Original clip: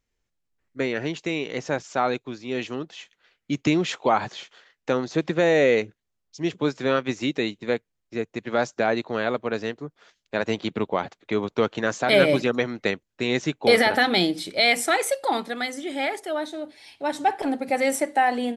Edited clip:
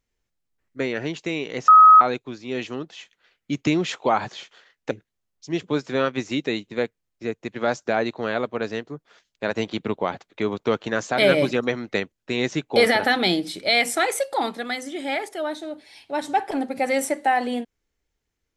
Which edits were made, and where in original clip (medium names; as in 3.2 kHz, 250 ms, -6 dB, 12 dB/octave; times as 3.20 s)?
1.68–2.01 s: bleep 1.27 kHz -6.5 dBFS
4.91–5.82 s: delete